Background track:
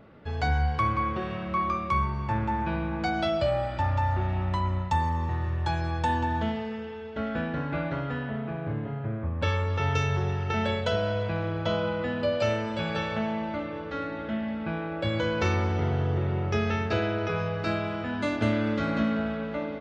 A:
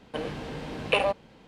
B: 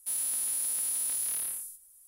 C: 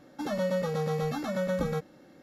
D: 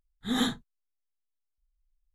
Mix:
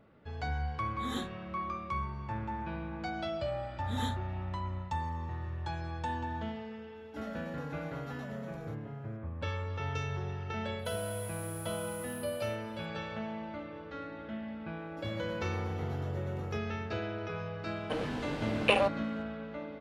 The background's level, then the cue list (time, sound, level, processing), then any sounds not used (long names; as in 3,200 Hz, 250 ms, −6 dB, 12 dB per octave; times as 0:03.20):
background track −9.5 dB
0:00.74: mix in D −11 dB
0:03.62: mix in D −10.5 dB
0:06.95: mix in C −14 dB + brickwall limiter −25 dBFS
0:10.79: mix in B −17 dB
0:14.78: mix in C −17 dB
0:17.76: mix in A −2 dB